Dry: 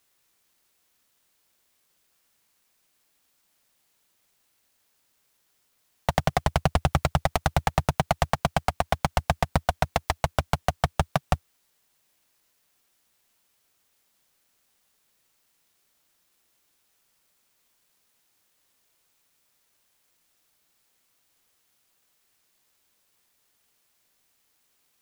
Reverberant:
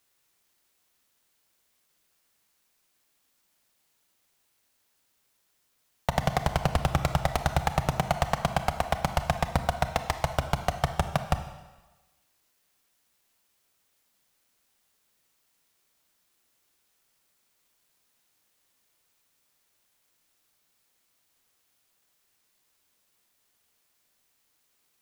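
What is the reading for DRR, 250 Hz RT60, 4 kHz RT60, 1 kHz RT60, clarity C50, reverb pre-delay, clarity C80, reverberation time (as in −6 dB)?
8.5 dB, 1.1 s, 1.1 s, 1.2 s, 10.0 dB, 26 ms, 12.0 dB, 1.2 s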